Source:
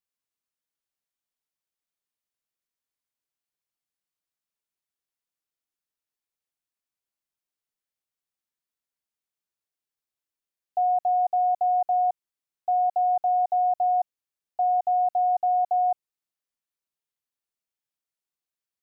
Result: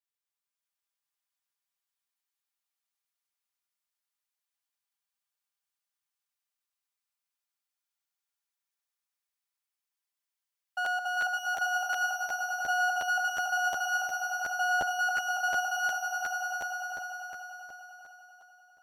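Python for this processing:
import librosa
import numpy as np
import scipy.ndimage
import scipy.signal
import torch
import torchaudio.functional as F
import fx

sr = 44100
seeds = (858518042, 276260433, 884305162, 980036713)

p1 = fx.lower_of_two(x, sr, delay_ms=5.0)
p2 = scipy.signal.sosfilt(scipy.signal.butter(4, 760.0, 'highpass', fs=sr, output='sos'), p1)
p3 = p2 + fx.echo_swell(p2, sr, ms=99, loudest=5, wet_db=-6.0, dry=0)
p4 = fx.buffer_crackle(p3, sr, first_s=0.4, period_s=0.36, block=512, kind='repeat')
y = F.gain(torch.from_numpy(p4), -2.0).numpy()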